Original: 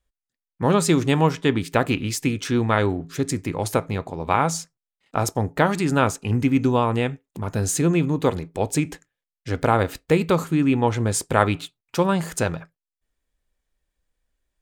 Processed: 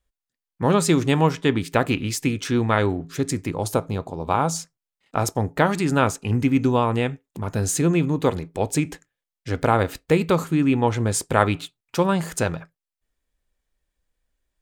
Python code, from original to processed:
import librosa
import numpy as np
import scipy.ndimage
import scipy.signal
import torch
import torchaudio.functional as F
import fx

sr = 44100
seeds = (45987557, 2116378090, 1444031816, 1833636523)

y = fx.peak_eq(x, sr, hz=2000.0, db=-10.0, octaves=0.73, at=(3.5, 4.56))